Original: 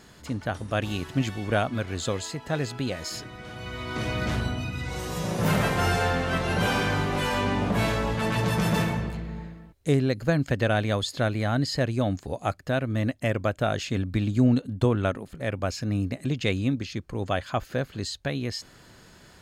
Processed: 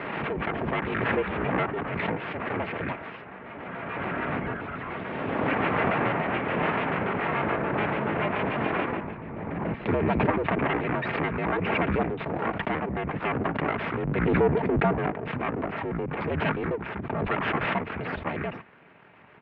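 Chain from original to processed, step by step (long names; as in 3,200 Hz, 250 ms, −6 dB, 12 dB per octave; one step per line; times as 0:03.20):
pitch shifter gated in a rhythm −10 semitones, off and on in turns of 72 ms
comb filter 4.2 ms, depth 76%
full-wave rectification
single-sideband voice off tune −59 Hz 170–2,600 Hz
background raised ahead of every attack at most 23 dB per second
level +2.5 dB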